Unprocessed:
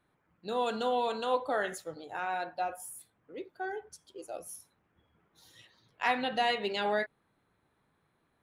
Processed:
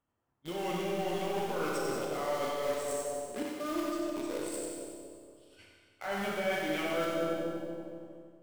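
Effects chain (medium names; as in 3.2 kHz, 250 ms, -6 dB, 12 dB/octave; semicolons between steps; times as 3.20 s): rotating-head pitch shifter -4 st; in parallel at -8.5 dB: companded quantiser 2-bit; on the sum: two-band feedback delay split 750 Hz, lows 235 ms, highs 94 ms, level -6 dB; gate -57 dBFS, range -10 dB; reverse; compression 6:1, threshold -34 dBFS, peak gain reduction 12 dB; reverse; Schroeder reverb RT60 1.6 s, combs from 26 ms, DRR -1 dB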